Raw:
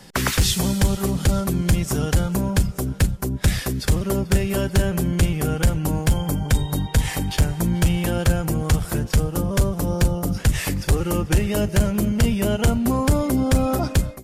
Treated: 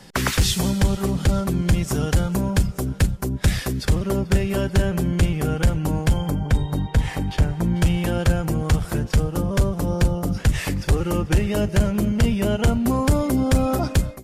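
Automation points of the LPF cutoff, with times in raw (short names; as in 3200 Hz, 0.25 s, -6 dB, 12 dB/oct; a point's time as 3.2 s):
LPF 6 dB/oct
9400 Hz
from 0.7 s 5100 Hz
from 1.76 s 9000 Hz
from 3.85 s 5100 Hz
from 6.3 s 2100 Hz
from 7.76 s 5400 Hz
from 12.86 s 11000 Hz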